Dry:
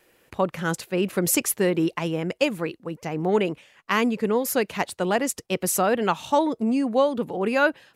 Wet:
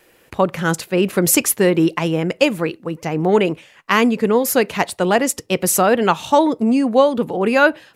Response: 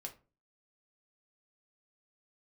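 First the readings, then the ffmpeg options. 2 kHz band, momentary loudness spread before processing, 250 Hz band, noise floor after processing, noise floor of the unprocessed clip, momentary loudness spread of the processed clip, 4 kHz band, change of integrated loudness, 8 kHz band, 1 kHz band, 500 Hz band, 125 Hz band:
+7.0 dB, 7 LU, +7.0 dB, -53 dBFS, -63 dBFS, 7 LU, +7.0 dB, +7.0 dB, +7.0 dB, +7.0 dB, +7.0 dB, +7.0 dB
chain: -filter_complex "[0:a]asplit=2[s0][s1];[1:a]atrim=start_sample=2205,afade=t=out:st=0.19:d=0.01,atrim=end_sample=8820[s2];[s1][s2]afir=irnorm=-1:irlink=0,volume=0.237[s3];[s0][s3]amix=inputs=2:normalize=0,volume=2"

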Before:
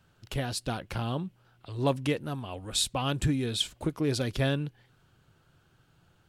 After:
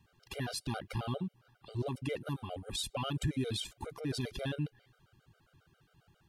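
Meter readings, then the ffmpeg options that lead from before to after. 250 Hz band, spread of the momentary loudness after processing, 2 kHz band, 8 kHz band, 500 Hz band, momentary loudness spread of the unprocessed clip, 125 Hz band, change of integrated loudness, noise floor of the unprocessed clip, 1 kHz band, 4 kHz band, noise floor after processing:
-7.0 dB, 6 LU, -7.5 dB, -9.0 dB, -7.5 dB, 9 LU, -6.5 dB, -7.5 dB, -66 dBFS, -7.5 dB, -8.0 dB, -73 dBFS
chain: -af "equalizer=f=7600:t=o:w=0.25:g=-3.5,alimiter=level_in=1.06:limit=0.0631:level=0:latency=1:release=42,volume=0.944,afftfilt=real='re*gt(sin(2*PI*7.4*pts/sr)*(1-2*mod(floor(b*sr/1024/400),2)),0)':imag='im*gt(sin(2*PI*7.4*pts/sr)*(1-2*mod(floor(b*sr/1024/400),2)),0)':win_size=1024:overlap=0.75"

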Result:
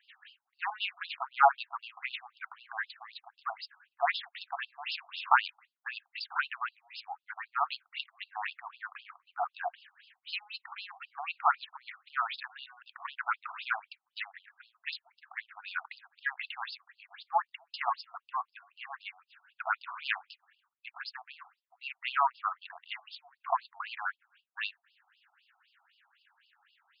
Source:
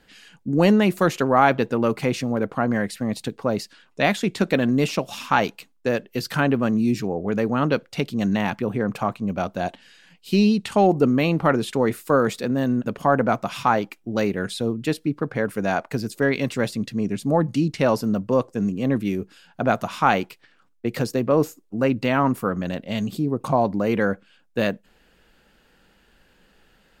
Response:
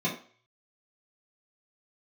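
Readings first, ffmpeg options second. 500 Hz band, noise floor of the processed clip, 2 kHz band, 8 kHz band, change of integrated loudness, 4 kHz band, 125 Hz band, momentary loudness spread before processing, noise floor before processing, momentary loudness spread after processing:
-23.0 dB, under -85 dBFS, -7.0 dB, under -40 dB, -12.5 dB, -6.5 dB, under -40 dB, 9 LU, -60 dBFS, 18 LU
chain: -af "aeval=exprs='0.75*(cos(1*acos(clip(val(0)/0.75,-1,1)))-cos(1*PI/2))+0.0473*(cos(3*acos(clip(val(0)/0.75,-1,1)))-cos(3*PI/2))+0.0473*(cos(4*acos(clip(val(0)/0.75,-1,1)))-cos(4*PI/2))':c=same,lowshelf=f=210:g=8,afftfilt=real='re*between(b*sr/1024,930*pow(3800/930,0.5+0.5*sin(2*PI*3.9*pts/sr))/1.41,930*pow(3800/930,0.5+0.5*sin(2*PI*3.9*pts/sr))*1.41)':imag='im*between(b*sr/1024,930*pow(3800/930,0.5+0.5*sin(2*PI*3.9*pts/sr))/1.41,930*pow(3800/930,0.5+0.5*sin(2*PI*3.9*pts/sr))*1.41)':win_size=1024:overlap=0.75"

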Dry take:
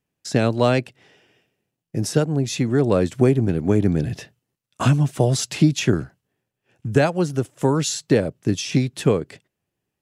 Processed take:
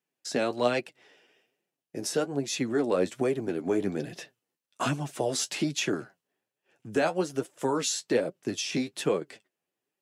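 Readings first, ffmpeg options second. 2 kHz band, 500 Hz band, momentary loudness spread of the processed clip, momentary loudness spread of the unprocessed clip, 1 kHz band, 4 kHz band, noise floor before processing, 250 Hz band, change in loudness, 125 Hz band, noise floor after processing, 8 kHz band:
-5.0 dB, -6.5 dB, 9 LU, 7 LU, -5.5 dB, -4.5 dB, -82 dBFS, -10.0 dB, -9.0 dB, -18.5 dB, under -85 dBFS, -4.0 dB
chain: -filter_complex "[0:a]highpass=310,asplit=2[s0][s1];[s1]alimiter=limit=0.188:level=0:latency=1:release=20,volume=1.06[s2];[s0][s2]amix=inputs=2:normalize=0,flanger=delay=5:depth=7.8:regen=38:speed=1.2:shape=triangular,volume=0.473"

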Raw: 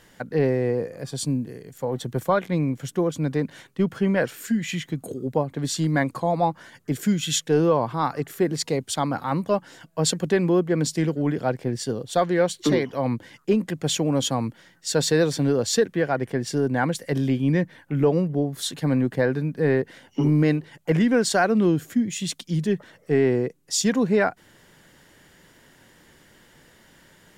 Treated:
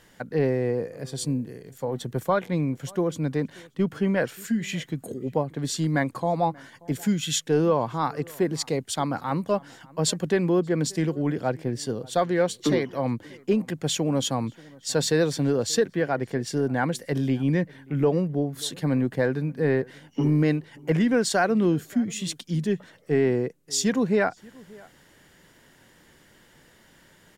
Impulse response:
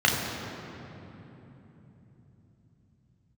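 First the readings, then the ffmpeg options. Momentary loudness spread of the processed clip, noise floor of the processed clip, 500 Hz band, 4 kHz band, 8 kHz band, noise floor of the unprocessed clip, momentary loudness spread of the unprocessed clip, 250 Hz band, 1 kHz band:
8 LU, -57 dBFS, -2.0 dB, -2.0 dB, -2.0 dB, -56 dBFS, 8 LU, -2.0 dB, -2.0 dB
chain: -filter_complex "[0:a]asplit=2[s0][s1];[s1]adelay=583.1,volume=0.0631,highshelf=f=4000:g=-13.1[s2];[s0][s2]amix=inputs=2:normalize=0,volume=0.794"

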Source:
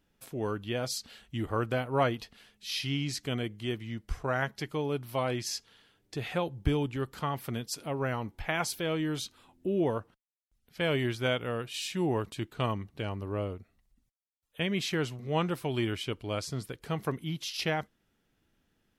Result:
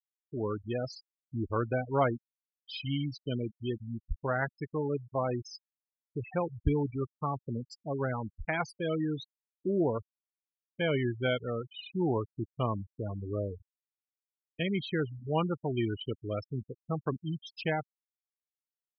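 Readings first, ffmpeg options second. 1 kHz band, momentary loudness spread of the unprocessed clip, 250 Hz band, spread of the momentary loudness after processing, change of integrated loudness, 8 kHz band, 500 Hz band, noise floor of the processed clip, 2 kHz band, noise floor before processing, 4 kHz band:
-1.0 dB, 9 LU, 0.0 dB, 10 LU, -1.0 dB, under -15 dB, 0.0 dB, under -85 dBFS, -3.0 dB, -76 dBFS, -7.0 dB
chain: -filter_complex "[0:a]afftfilt=real='re*gte(hypot(re,im),0.0501)':imag='im*gte(hypot(re,im),0.0501)':win_size=1024:overlap=0.75,acrossover=split=3900[s0][s1];[s1]acompressor=threshold=0.00355:ratio=4:attack=1:release=60[s2];[s0][s2]amix=inputs=2:normalize=0"

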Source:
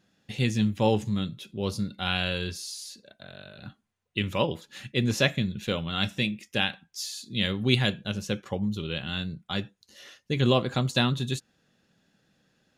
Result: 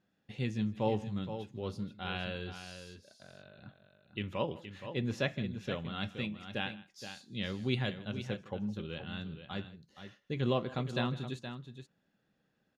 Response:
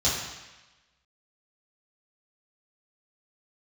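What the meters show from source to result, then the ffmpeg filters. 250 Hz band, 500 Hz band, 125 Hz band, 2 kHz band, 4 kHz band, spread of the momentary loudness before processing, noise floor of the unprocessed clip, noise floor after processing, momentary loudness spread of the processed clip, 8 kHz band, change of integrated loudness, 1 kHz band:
-8.5 dB, -7.5 dB, -9.0 dB, -10.0 dB, -13.0 dB, 15 LU, -73 dBFS, -78 dBFS, 18 LU, -18.0 dB, -9.5 dB, -7.5 dB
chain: -af "lowpass=f=1700:p=1,lowshelf=f=340:g=-3,aecho=1:1:158|471:0.1|0.316,volume=0.473"

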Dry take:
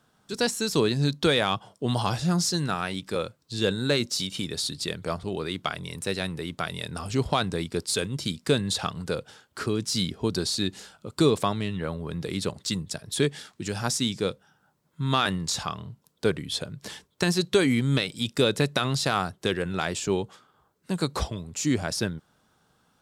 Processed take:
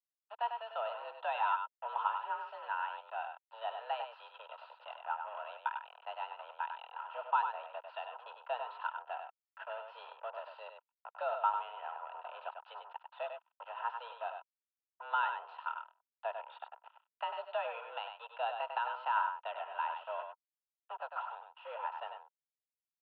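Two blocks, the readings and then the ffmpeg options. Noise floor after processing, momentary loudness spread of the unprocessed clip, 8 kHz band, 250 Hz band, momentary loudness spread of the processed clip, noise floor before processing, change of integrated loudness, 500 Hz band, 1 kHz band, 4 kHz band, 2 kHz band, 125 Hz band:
under -85 dBFS, 10 LU, under -40 dB, under -40 dB, 16 LU, -68 dBFS, -12.0 dB, -15.5 dB, -2.0 dB, -22.5 dB, -11.0 dB, under -40 dB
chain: -filter_complex "[0:a]acrusher=bits=4:mix=0:aa=0.5,asplit=3[s0][s1][s2];[s0]bandpass=f=730:t=q:w=8,volume=1[s3];[s1]bandpass=f=1090:t=q:w=8,volume=0.501[s4];[s2]bandpass=f=2440:t=q:w=8,volume=0.355[s5];[s3][s4][s5]amix=inputs=3:normalize=0,aemphasis=mode=reproduction:type=75kf,asplit=2[s6][s7];[s7]aecho=0:1:98:0.473[s8];[s6][s8]amix=inputs=2:normalize=0,highpass=f=290:t=q:w=0.5412,highpass=f=290:t=q:w=1.307,lowpass=f=3000:t=q:w=0.5176,lowpass=f=3000:t=q:w=0.7071,lowpass=f=3000:t=q:w=1.932,afreqshift=230,volume=1.26"

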